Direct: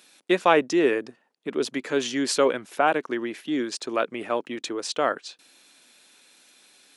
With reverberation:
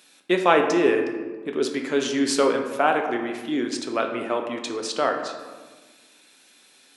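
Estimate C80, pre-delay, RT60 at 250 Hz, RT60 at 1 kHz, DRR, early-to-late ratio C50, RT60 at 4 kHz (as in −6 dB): 8.0 dB, 3 ms, 2.0 s, 1.3 s, 3.5 dB, 6.5 dB, 0.75 s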